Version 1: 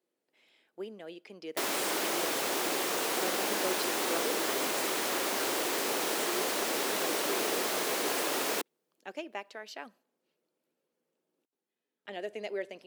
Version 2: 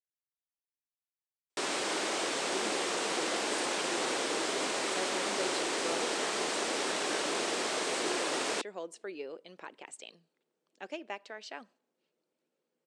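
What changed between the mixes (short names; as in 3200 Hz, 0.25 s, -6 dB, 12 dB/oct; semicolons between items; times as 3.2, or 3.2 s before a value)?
speech: entry +1.75 s; master: add Chebyshev low-pass 8700 Hz, order 4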